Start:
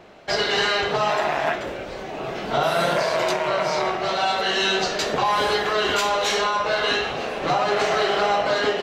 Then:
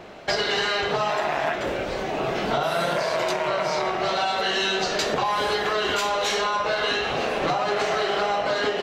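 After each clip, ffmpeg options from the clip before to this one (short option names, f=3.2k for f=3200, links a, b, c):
-af "acompressor=threshold=-26dB:ratio=6,volume=5dB"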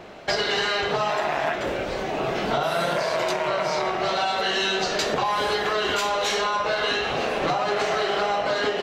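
-af anull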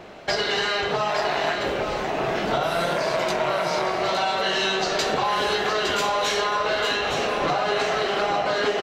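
-af "aecho=1:1:862:0.447"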